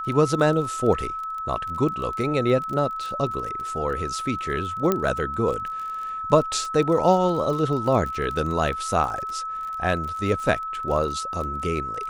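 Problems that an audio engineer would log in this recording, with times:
crackle 30/s -30 dBFS
tone 1300 Hz -28 dBFS
4.92 pop -8 dBFS

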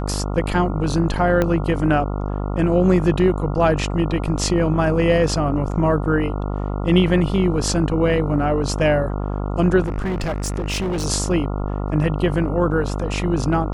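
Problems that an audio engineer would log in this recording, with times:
buzz 50 Hz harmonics 28 -24 dBFS
1.42 pop -7 dBFS
9.82–11.06 clipped -19.5 dBFS

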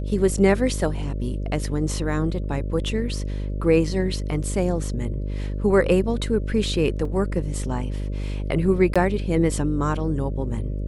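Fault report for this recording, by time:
buzz 50 Hz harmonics 12 -27 dBFS
7.05 gap 3.4 ms
8.94–8.96 gap 16 ms

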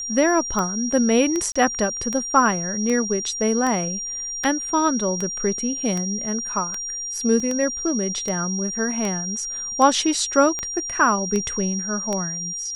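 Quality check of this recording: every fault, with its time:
tick 78 rpm -12 dBFS
tone 5700 Hz -27 dBFS
1.52–1.55 gap 35 ms
7.4 gap 3.2 ms

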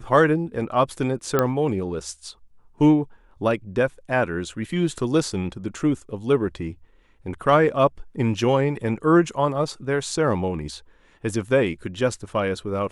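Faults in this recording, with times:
1.39 pop -6 dBFS

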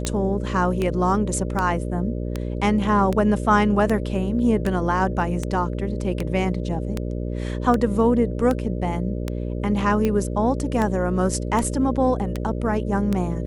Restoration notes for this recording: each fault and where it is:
buzz 60 Hz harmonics 10 -27 dBFS
tick 78 rpm -11 dBFS

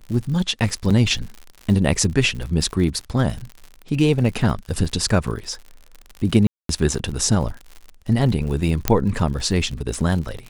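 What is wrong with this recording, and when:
crackle 77/s -29 dBFS
0.9–0.91 gap 5.7 ms
6.47–6.69 gap 0.223 s
8.88 pop -1 dBFS

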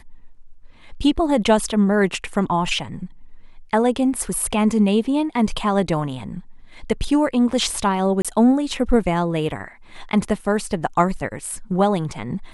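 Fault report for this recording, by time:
8.22–8.25 gap 26 ms

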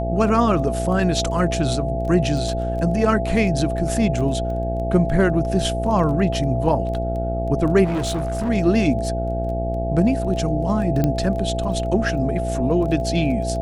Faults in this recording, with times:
buzz 60 Hz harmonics 14 -25 dBFS
crackle 12/s -29 dBFS
tone 670 Hz -25 dBFS
7.84–8.5 clipped -19.5 dBFS
11.04 pop -8 dBFS

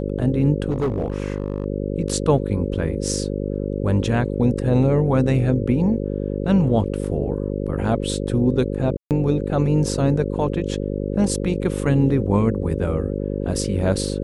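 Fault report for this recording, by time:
buzz 50 Hz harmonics 11 -25 dBFS
0.7–1.66 clipped -17 dBFS
8.97–9.11 gap 0.138 s

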